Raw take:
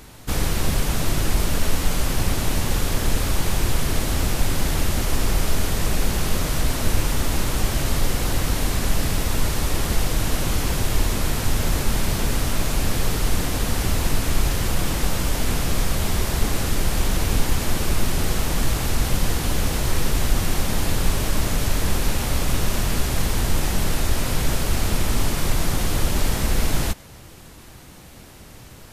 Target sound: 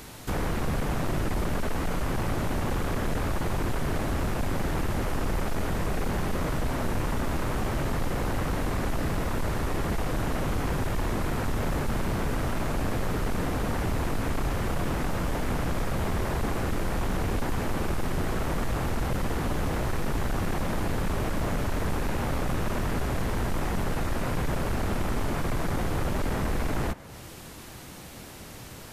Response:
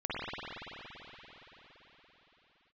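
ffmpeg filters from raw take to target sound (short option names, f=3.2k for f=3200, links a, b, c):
-filter_complex "[0:a]lowshelf=f=76:g=-8,acrossover=split=2000[a][b];[a]asoftclip=type=tanh:threshold=-24.5dB[c];[b]acompressor=threshold=-46dB:ratio=12[d];[c][d]amix=inputs=2:normalize=0,volume=2dB"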